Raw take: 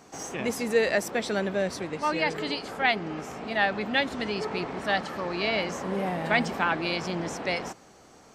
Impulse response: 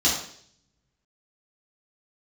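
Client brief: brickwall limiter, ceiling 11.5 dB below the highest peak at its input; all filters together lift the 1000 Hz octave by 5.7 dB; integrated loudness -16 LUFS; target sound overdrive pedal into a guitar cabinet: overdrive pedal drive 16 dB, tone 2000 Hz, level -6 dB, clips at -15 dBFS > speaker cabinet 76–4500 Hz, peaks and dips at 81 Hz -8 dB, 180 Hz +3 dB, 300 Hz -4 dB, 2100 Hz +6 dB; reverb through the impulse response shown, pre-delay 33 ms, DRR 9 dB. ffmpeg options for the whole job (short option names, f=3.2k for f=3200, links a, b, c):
-filter_complex "[0:a]equalizer=f=1k:t=o:g=7.5,alimiter=limit=-18dB:level=0:latency=1,asplit=2[a][b];[1:a]atrim=start_sample=2205,adelay=33[c];[b][c]afir=irnorm=-1:irlink=0,volume=-23dB[d];[a][d]amix=inputs=2:normalize=0,asplit=2[e][f];[f]highpass=f=720:p=1,volume=16dB,asoftclip=type=tanh:threshold=-15dB[g];[e][g]amix=inputs=2:normalize=0,lowpass=f=2k:p=1,volume=-6dB,highpass=76,equalizer=f=81:t=q:w=4:g=-8,equalizer=f=180:t=q:w=4:g=3,equalizer=f=300:t=q:w=4:g=-4,equalizer=f=2.1k:t=q:w=4:g=6,lowpass=f=4.5k:w=0.5412,lowpass=f=4.5k:w=1.3066,volume=8dB"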